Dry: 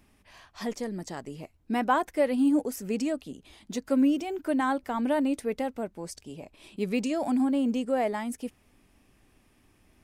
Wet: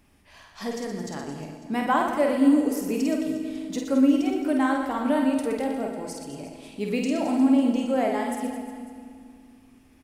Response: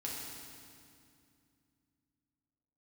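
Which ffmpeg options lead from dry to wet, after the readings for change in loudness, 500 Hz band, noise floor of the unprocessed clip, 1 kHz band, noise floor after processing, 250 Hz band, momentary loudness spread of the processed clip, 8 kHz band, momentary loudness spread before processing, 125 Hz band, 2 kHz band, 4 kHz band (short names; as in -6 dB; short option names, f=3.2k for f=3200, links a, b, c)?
+4.0 dB, +3.0 dB, -64 dBFS, +3.0 dB, -56 dBFS, +4.5 dB, 17 LU, +3.0 dB, 16 LU, +3.0 dB, +3.5 dB, +3.5 dB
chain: -filter_complex "[0:a]aecho=1:1:50|120|218|355.2|547.3:0.631|0.398|0.251|0.158|0.1,asplit=2[a][b];[1:a]atrim=start_sample=2205[c];[b][c]afir=irnorm=-1:irlink=0,volume=-5dB[d];[a][d]amix=inputs=2:normalize=0,volume=-2dB"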